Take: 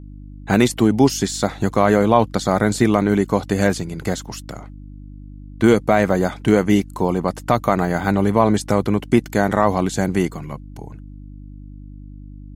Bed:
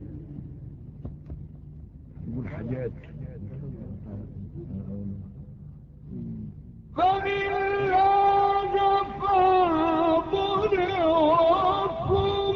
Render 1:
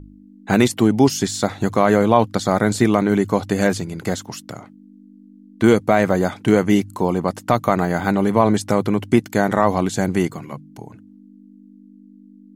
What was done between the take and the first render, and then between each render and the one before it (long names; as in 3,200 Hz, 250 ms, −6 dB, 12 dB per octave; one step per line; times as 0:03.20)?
hum removal 50 Hz, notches 3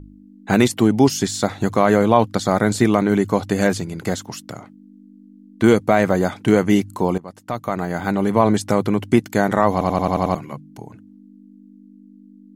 0:07.18–0:08.43: fade in, from −19 dB
0:09.72: stutter in place 0.09 s, 7 plays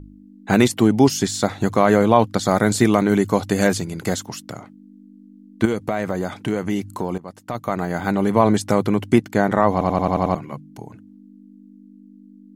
0:02.43–0:04.29: high-shelf EQ 4,600 Hz +4.5 dB
0:05.65–0:07.55: downward compressor 2.5 to 1, threshold −21 dBFS
0:09.18–0:10.53: high-shelf EQ 4,200 Hz −8 dB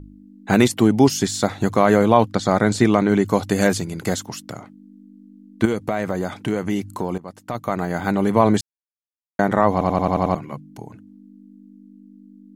0:02.32–0:03.26: parametric band 13,000 Hz −14.5 dB 0.9 octaves
0:08.61–0:09.39: silence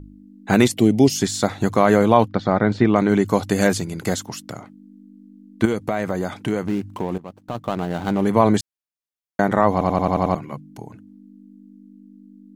0:00.72–0:01.16: flat-topped bell 1,200 Hz −12.5 dB 1.2 octaves
0:02.28–0:02.96: high-frequency loss of the air 260 metres
0:06.66–0:08.26: running median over 25 samples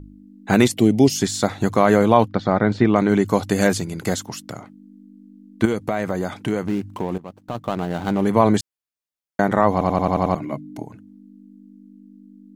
0:10.40–0:10.83: hollow resonant body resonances 290/620/2,100/3,700 Hz, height 12 dB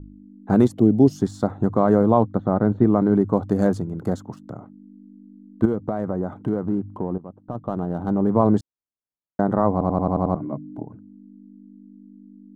adaptive Wiener filter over 9 samples
drawn EQ curve 280 Hz 0 dB, 610 Hz −3 dB, 1,300 Hz −6 dB, 2,300 Hz −24 dB, 3,900 Hz −17 dB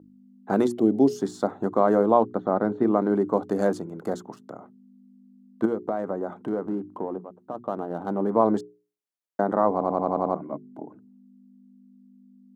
high-pass filter 300 Hz 12 dB per octave
mains-hum notches 60/120/180/240/300/360/420 Hz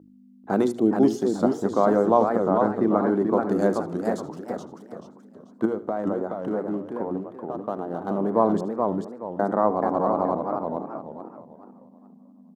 repeating echo 76 ms, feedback 30%, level −17 dB
feedback echo with a swinging delay time 432 ms, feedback 33%, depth 214 cents, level −4.5 dB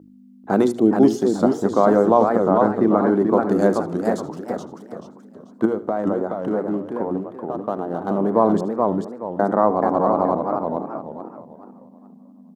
level +4.5 dB
brickwall limiter −3 dBFS, peak gain reduction 2 dB